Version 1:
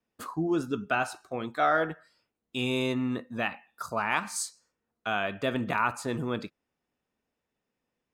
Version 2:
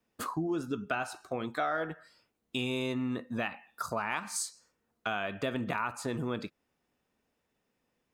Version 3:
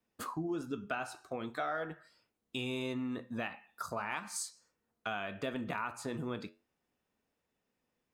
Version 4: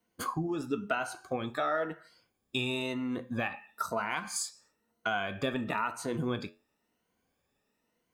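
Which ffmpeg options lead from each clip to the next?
-af "acompressor=threshold=-37dB:ratio=3,volume=4.5dB"
-af "flanger=delay=9.8:depth=2.6:regen=-78:speed=0.43:shape=sinusoidal"
-af "afftfilt=real='re*pow(10,10/40*sin(2*PI*(1.9*log(max(b,1)*sr/1024/100)/log(2)-(1)*(pts-256)/sr)))':imag='im*pow(10,10/40*sin(2*PI*(1.9*log(max(b,1)*sr/1024/100)/log(2)-(1)*(pts-256)/sr)))':win_size=1024:overlap=0.75,volume=4dB"

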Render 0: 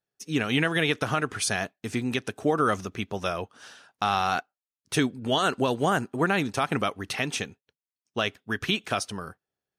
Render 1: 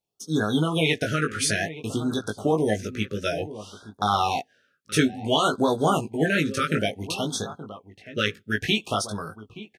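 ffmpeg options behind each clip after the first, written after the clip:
-filter_complex "[0:a]asplit=2[a][b];[b]adelay=19,volume=-3.5dB[c];[a][c]amix=inputs=2:normalize=0,asplit=2[d][e];[e]adelay=874.6,volume=-14dB,highshelf=f=4k:g=-19.7[f];[d][f]amix=inputs=2:normalize=0,afftfilt=real='re*(1-between(b*sr/1024,810*pow(2400/810,0.5+0.5*sin(2*PI*0.57*pts/sr))/1.41,810*pow(2400/810,0.5+0.5*sin(2*PI*0.57*pts/sr))*1.41))':imag='im*(1-between(b*sr/1024,810*pow(2400/810,0.5+0.5*sin(2*PI*0.57*pts/sr))/1.41,810*pow(2400/810,0.5+0.5*sin(2*PI*0.57*pts/sr))*1.41))':win_size=1024:overlap=0.75,volume=1.5dB"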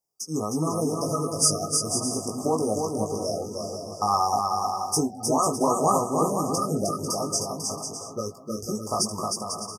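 -filter_complex "[0:a]afftfilt=real='re*(1-between(b*sr/4096,1300,4700))':imag='im*(1-between(b*sr/4096,1300,4700))':win_size=4096:overlap=0.75,tiltshelf=f=800:g=-6,asplit=2[a][b];[b]aecho=0:1:310|496|607.6|674.6|714.7:0.631|0.398|0.251|0.158|0.1[c];[a][c]amix=inputs=2:normalize=0"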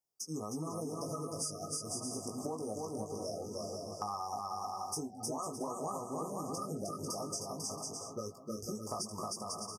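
-af "acompressor=threshold=-29dB:ratio=6,volume=-7dB"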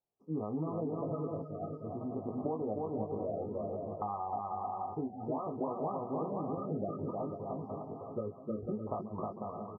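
-af "lowpass=f=1k:w=0.5412,lowpass=f=1k:w=1.3066,volume=4dB"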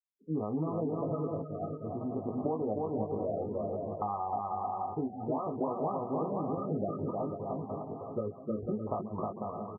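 -af "afftfilt=real='re*gte(hypot(re,im),0.00224)':imag='im*gte(hypot(re,im),0.00224)':win_size=1024:overlap=0.75,volume=3dB"

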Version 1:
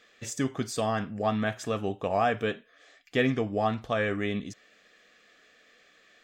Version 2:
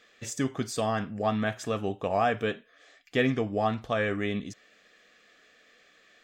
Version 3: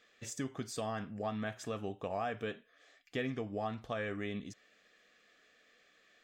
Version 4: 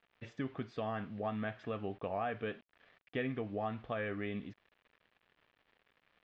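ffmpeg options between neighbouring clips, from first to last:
-af anull
-af "acompressor=threshold=-29dB:ratio=2,volume=-7dB"
-af "acrusher=bits=9:mix=0:aa=0.000001,lowpass=f=3.1k:w=0.5412,lowpass=f=3.1k:w=1.3066"

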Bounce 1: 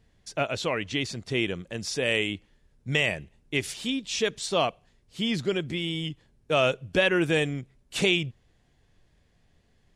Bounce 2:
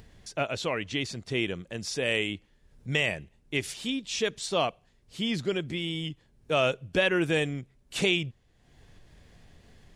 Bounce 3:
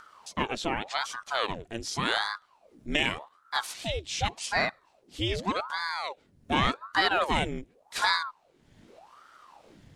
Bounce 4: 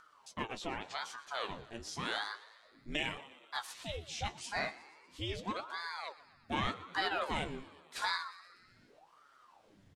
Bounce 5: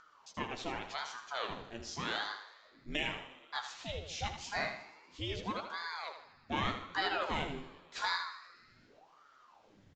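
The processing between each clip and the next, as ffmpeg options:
-af "acompressor=mode=upward:threshold=-40dB:ratio=2.5,volume=-2dB"
-af "aeval=exprs='val(0)*sin(2*PI*730*n/s+730*0.85/0.86*sin(2*PI*0.86*n/s))':c=same,volume=2.5dB"
-filter_complex "[0:a]asplit=7[a][b][c][d][e][f][g];[b]adelay=120,afreqshift=77,volume=-18dB[h];[c]adelay=240,afreqshift=154,volume=-22.2dB[i];[d]adelay=360,afreqshift=231,volume=-26.3dB[j];[e]adelay=480,afreqshift=308,volume=-30.5dB[k];[f]adelay=600,afreqshift=385,volume=-34.6dB[l];[g]adelay=720,afreqshift=462,volume=-38.8dB[m];[a][h][i][j][k][l][m]amix=inputs=7:normalize=0,flanger=delay=6:depth=9.2:regen=51:speed=0.33:shape=triangular,volume=-5.5dB"
-af "aecho=1:1:79|158|237|316:0.355|0.128|0.046|0.0166,aresample=16000,aresample=44100"

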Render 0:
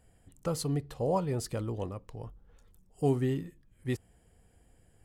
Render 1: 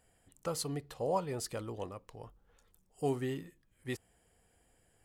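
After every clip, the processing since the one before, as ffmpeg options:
-af "lowshelf=f=330:g=-11"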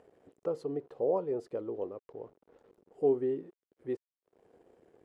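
-filter_complex "[0:a]asplit=2[a][b];[b]acompressor=mode=upward:threshold=-39dB:ratio=2.5,volume=2.5dB[c];[a][c]amix=inputs=2:normalize=0,aeval=exprs='val(0)*gte(abs(val(0)),0.00398)':c=same,bandpass=f=410:t=q:w=2.5:csg=0,volume=1dB"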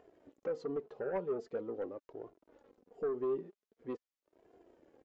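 -af "alimiter=level_in=1dB:limit=-24dB:level=0:latency=1:release=128,volume=-1dB,aresample=16000,aeval=exprs='0.0596*sin(PI/2*1.41*val(0)/0.0596)':c=same,aresample=44100,flanger=delay=2.8:depth=2.4:regen=34:speed=0.44:shape=triangular,volume=-4dB"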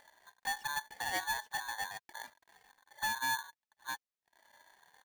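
-af "aeval=exprs='val(0)*sgn(sin(2*PI*1300*n/s))':c=same"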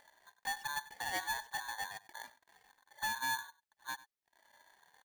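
-af "aecho=1:1:96:0.119,volume=-2dB"

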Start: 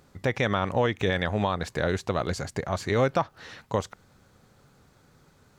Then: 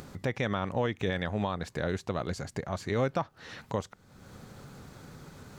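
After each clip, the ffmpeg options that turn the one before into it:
-af "equalizer=f=190:t=o:w=1.7:g=3.5,acompressor=mode=upward:threshold=-27dB:ratio=2.5,volume=-6.5dB"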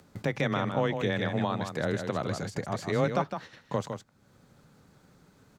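-af "afreqshift=17,aecho=1:1:158:0.447,agate=range=-13dB:threshold=-42dB:ratio=16:detection=peak,volume=1.5dB"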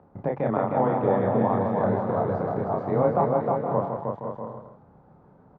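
-filter_complex "[0:a]lowpass=f=860:t=q:w=2.1,asplit=2[a][b];[b]adelay=31,volume=-2.5dB[c];[a][c]amix=inputs=2:normalize=0,asplit=2[d][e];[e]aecho=0:1:310|511.5|642.5|727.6|782.9:0.631|0.398|0.251|0.158|0.1[f];[d][f]amix=inputs=2:normalize=0"

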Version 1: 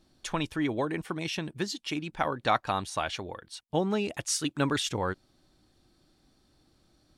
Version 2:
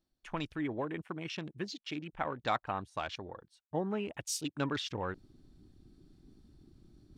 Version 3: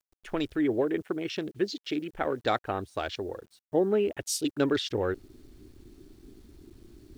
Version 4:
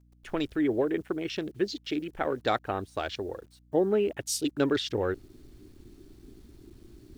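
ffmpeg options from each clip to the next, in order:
-af "areverse,acompressor=mode=upward:threshold=-35dB:ratio=2.5,areverse,afwtdn=0.01,volume=-6.5dB"
-af "equalizer=f=160:t=o:w=0.67:g=-9,equalizer=f=400:t=o:w=0.67:g=7,equalizer=f=1k:t=o:w=0.67:g=-10,equalizer=f=2.5k:t=o:w=0.67:g=-5,equalizer=f=6.3k:t=o:w=0.67:g=-4,acrusher=bits=11:mix=0:aa=0.000001,volume=8dB"
-af "aeval=exprs='val(0)+0.00112*(sin(2*PI*60*n/s)+sin(2*PI*2*60*n/s)/2+sin(2*PI*3*60*n/s)/3+sin(2*PI*4*60*n/s)/4+sin(2*PI*5*60*n/s)/5)':c=same"

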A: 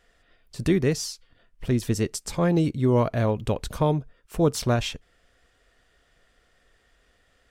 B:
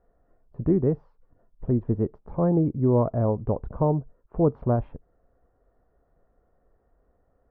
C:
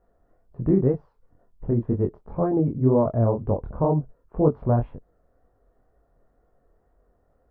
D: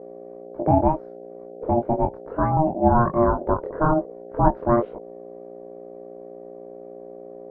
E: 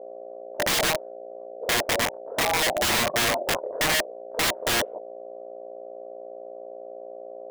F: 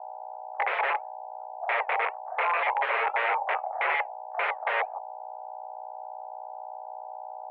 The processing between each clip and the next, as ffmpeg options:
-af "lowpass=f=1k:w=0.5412,lowpass=f=1k:w=1.3066"
-af "flanger=delay=20:depth=6.4:speed=2,volume=4.5dB"
-af "aeval=exprs='val(0)+0.01*(sin(2*PI*60*n/s)+sin(2*PI*2*60*n/s)/2+sin(2*PI*3*60*n/s)/3+sin(2*PI*4*60*n/s)/4+sin(2*PI*5*60*n/s)/5)':c=same,aeval=exprs='val(0)*sin(2*PI*470*n/s)':c=same,volume=4.5dB"
-af "bandpass=f=640:t=q:w=3.7:csg=0,aeval=exprs='(mod(15.8*val(0)+1,2)-1)/15.8':c=same,volume=6dB"
-af "flanger=delay=1.6:depth=1.6:regen=-88:speed=1.8:shape=sinusoidal,highpass=f=220:t=q:w=0.5412,highpass=f=220:t=q:w=1.307,lowpass=f=2.2k:t=q:w=0.5176,lowpass=f=2.2k:t=q:w=0.7071,lowpass=f=2.2k:t=q:w=1.932,afreqshift=220,volume=4dB"

